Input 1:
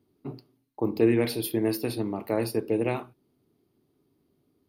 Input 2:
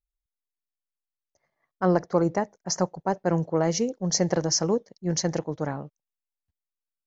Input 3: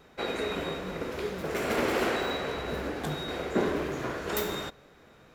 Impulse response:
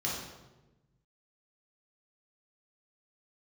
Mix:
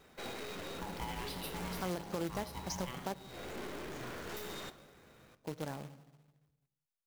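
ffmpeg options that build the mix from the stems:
-filter_complex "[0:a]equalizer=f=3k:t=o:w=0.62:g=10,acrossover=split=440[a][b];[a]acompressor=threshold=-37dB:ratio=2[c];[c][b]amix=inputs=2:normalize=0,aeval=exprs='val(0)*sin(2*PI*510*n/s)':c=same,volume=-9.5dB,asplit=2[d][e];[e]volume=-11.5dB[f];[1:a]alimiter=limit=-14.5dB:level=0:latency=1:release=15,deesser=0.55,volume=-5.5dB,asplit=3[g][h][i];[g]atrim=end=3.14,asetpts=PTS-STARTPTS,afade=t=out:st=3.136:d=0.004:c=hsin[j];[h]atrim=start=3.14:end=5.44,asetpts=PTS-STARTPTS,volume=0[k];[i]atrim=start=5.44,asetpts=PTS-STARTPTS,afade=t=in:d=0.004:c=hsin[l];[j][k][l]concat=n=3:v=0:a=1,asplit=3[m][n][o];[n]volume=-23.5dB[p];[2:a]aeval=exprs='(tanh(70.8*val(0)+0.55)-tanh(0.55))/70.8':c=same,volume=-3.5dB,asplit=2[q][r];[r]volume=-17.5dB[s];[o]apad=whole_len=235909[t];[q][t]sidechaincompress=threshold=-47dB:ratio=8:attack=38:release=273[u];[3:a]atrim=start_sample=2205[v];[f][p][s]amix=inputs=3:normalize=0[w];[w][v]afir=irnorm=-1:irlink=0[x];[d][m][u][x]amix=inputs=4:normalize=0,acrusher=bits=2:mode=log:mix=0:aa=0.000001,acompressor=threshold=-40dB:ratio=2"

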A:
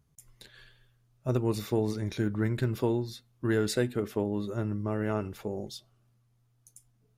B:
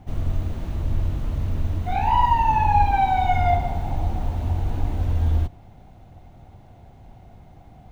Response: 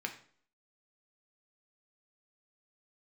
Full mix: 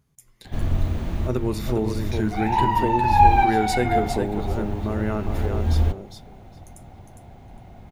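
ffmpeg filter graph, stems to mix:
-filter_complex "[0:a]volume=1dB,asplit=4[a][b][c][d];[b]volume=-7.5dB[e];[c]volume=-3.5dB[f];[1:a]adelay=450,volume=1.5dB,asplit=2[g][h];[h]volume=-8.5dB[i];[d]apad=whole_len=368805[j];[g][j]sidechaincompress=threshold=-36dB:ratio=8:attack=32:release=230[k];[2:a]atrim=start_sample=2205[l];[e][i]amix=inputs=2:normalize=0[m];[m][l]afir=irnorm=-1:irlink=0[n];[f]aecho=0:1:407|814|1221:1|0.15|0.0225[o];[a][k][n][o]amix=inputs=4:normalize=0"

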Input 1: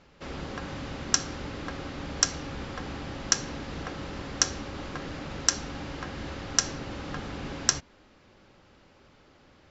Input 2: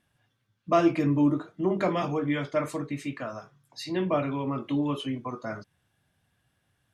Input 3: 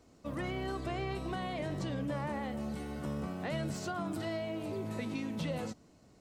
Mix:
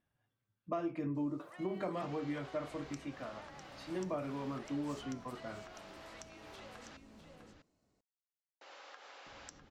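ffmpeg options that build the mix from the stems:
-filter_complex "[0:a]acrossover=split=380[a][b];[b]acompressor=threshold=-37dB:ratio=6[c];[a][c]amix=inputs=2:normalize=0,adelay=1800,volume=-8.5dB,asplit=3[d][e][f];[d]atrim=end=6.97,asetpts=PTS-STARTPTS,afade=t=out:st=6.966:d=0.004:c=hsin[g];[e]atrim=start=6.97:end=8.61,asetpts=PTS-STARTPTS,volume=0[h];[f]atrim=start=8.61,asetpts=PTS-STARTPTS,afade=t=in:d=0.004:c=hsin[i];[g][h][i]concat=n=3:v=0:a=1,asplit=2[j][k];[k]volume=-14dB[l];[1:a]highshelf=f=2.2k:g=-10.5,volume=-8.5dB[m];[2:a]alimiter=level_in=11dB:limit=-24dB:level=0:latency=1:release=126,volume=-11dB,adelay=1150,volume=-2.5dB,asplit=2[n][o];[o]volume=-12.5dB[p];[j][n]amix=inputs=2:normalize=0,highpass=f=560:w=0.5412,highpass=f=560:w=1.3066,acompressor=threshold=-51dB:ratio=3,volume=0dB[q];[l][p]amix=inputs=2:normalize=0,aecho=0:1:651:1[r];[m][q][r]amix=inputs=3:normalize=0,equalizer=f=140:t=o:w=1.7:g=-3,acompressor=threshold=-33dB:ratio=6"

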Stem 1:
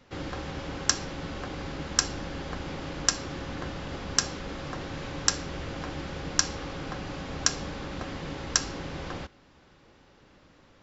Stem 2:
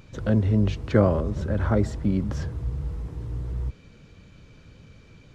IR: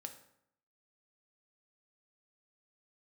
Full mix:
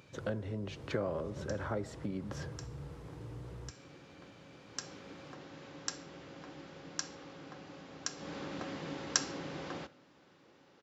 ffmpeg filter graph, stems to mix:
-filter_complex "[0:a]equalizer=f=230:w=0.98:g=7,adelay=600,volume=-8.5dB,afade=t=in:st=4.65:d=0.3:silence=0.473151,afade=t=in:st=8.15:d=0.2:silence=0.375837,asplit=2[a][b];[b]volume=-3dB[c];[1:a]acompressor=threshold=-24dB:ratio=6,volume=-6.5dB,asplit=3[d][e][f];[e]volume=-5dB[g];[f]apad=whole_len=503809[h];[a][h]sidechaincompress=threshold=-45dB:ratio=8:attack=16:release=165[i];[2:a]atrim=start_sample=2205[j];[c][g]amix=inputs=2:normalize=0[k];[k][j]afir=irnorm=-1:irlink=0[l];[i][d][l]amix=inputs=3:normalize=0,highpass=160,equalizer=f=220:t=o:w=0.66:g=-7"

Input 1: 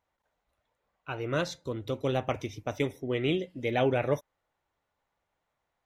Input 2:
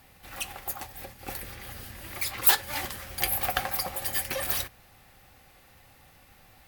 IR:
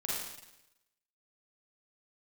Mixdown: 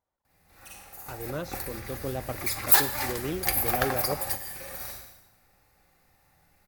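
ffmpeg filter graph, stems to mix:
-filter_complex "[0:a]equalizer=f=2.6k:t=o:w=1.7:g=-7.5,volume=-4dB,asplit=2[a][b];[1:a]equalizer=f=3.1k:w=3.1:g=-9.5,adelay=250,volume=0.5dB,asplit=2[c][d];[d]volume=-12.5dB[e];[b]apad=whole_len=305349[f];[c][f]sidechaingate=range=-33dB:threshold=-57dB:ratio=16:detection=peak[g];[2:a]atrim=start_sample=2205[h];[e][h]afir=irnorm=-1:irlink=0[i];[a][g][i]amix=inputs=3:normalize=0"

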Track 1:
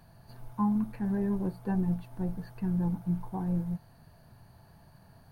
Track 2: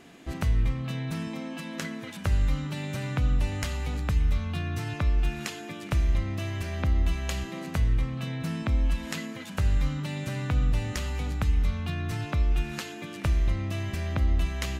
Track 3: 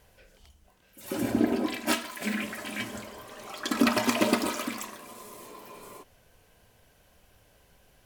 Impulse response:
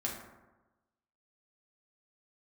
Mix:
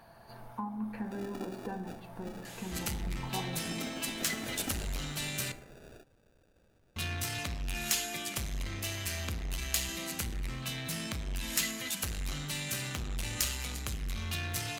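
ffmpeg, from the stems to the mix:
-filter_complex "[0:a]alimiter=level_in=1.5dB:limit=-24dB:level=0:latency=1,volume=-1.5dB,acompressor=threshold=-36dB:ratio=5,bass=f=250:g=-14,treble=f=4k:g=-6,volume=2dB,asplit=2[a][b];[b]volume=-3dB[c];[1:a]asoftclip=type=tanh:threshold=-29.5dB,crystalizer=i=9:c=0,adelay=2450,volume=-8dB,asplit=3[d][e][f];[d]atrim=end=5.52,asetpts=PTS-STARTPTS,afade=t=out:st=5.516:d=0.004:c=hsin[g];[e]atrim=start=5.52:end=6.96,asetpts=PTS-STARTPTS,volume=0[h];[f]atrim=start=6.96,asetpts=PTS-STARTPTS,afade=t=in:d=0.004:c=hsin[i];[g][h][i]concat=n=3:v=0:a=1,asplit=2[j][k];[k]volume=-9dB[l];[2:a]alimiter=limit=-16dB:level=0:latency=1:release=315,acrusher=samples=42:mix=1:aa=0.000001,volume=-6.5dB,afade=t=in:st=4.23:d=0.49:silence=0.298538[m];[3:a]atrim=start_sample=2205[n];[c][l]amix=inputs=2:normalize=0[o];[o][n]afir=irnorm=-1:irlink=0[p];[a][j][m][p]amix=inputs=4:normalize=0"

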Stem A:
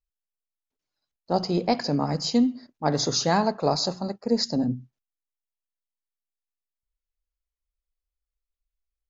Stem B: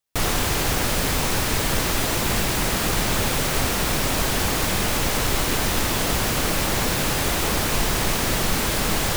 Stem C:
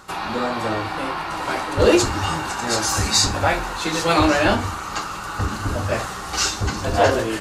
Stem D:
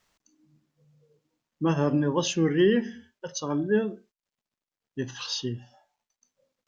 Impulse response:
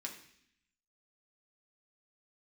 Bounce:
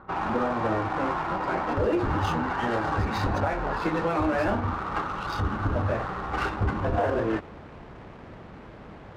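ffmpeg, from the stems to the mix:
-filter_complex "[0:a]volume=-11dB,asplit=2[a][b];[1:a]highpass=53,volume=-18dB[c];[2:a]lowpass=2k,volume=0dB[d];[3:a]highpass=1.2k,volume=-2dB[e];[b]apad=whole_len=404171[f];[c][f]sidechaincompress=threshold=-36dB:ratio=8:attack=16:release=244[g];[a][g][d][e]amix=inputs=4:normalize=0,adynamicsmooth=sensitivity=4:basefreq=1.4k,highshelf=f=3.9k:g=-8.5,alimiter=limit=-16.5dB:level=0:latency=1:release=193"

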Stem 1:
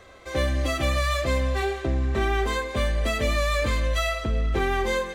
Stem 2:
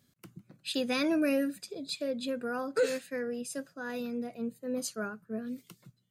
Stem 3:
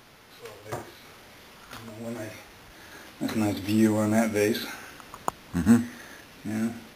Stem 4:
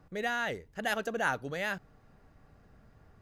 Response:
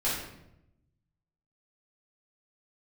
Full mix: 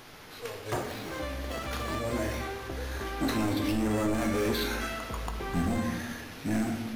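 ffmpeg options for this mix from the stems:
-filter_complex "[0:a]equalizer=f=1.1k:w=1.5:g=6.5,acompressor=threshold=-31dB:ratio=3,adelay=850,volume=-5.5dB[a];[1:a]volume=-17dB[b];[2:a]alimiter=limit=-18dB:level=0:latency=1:release=71,asoftclip=type=hard:threshold=-27.5dB,volume=1.5dB,asplit=2[c][d];[d]volume=-11.5dB[e];[3:a]acrusher=samples=36:mix=1:aa=0.000001,adelay=650,volume=-10.5dB[f];[4:a]atrim=start_sample=2205[g];[e][g]afir=irnorm=-1:irlink=0[h];[a][b][c][f][h]amix=inputs=5:normalize=0,alimiter=limit=-20.5dB:level=0:latency=1:release=55"

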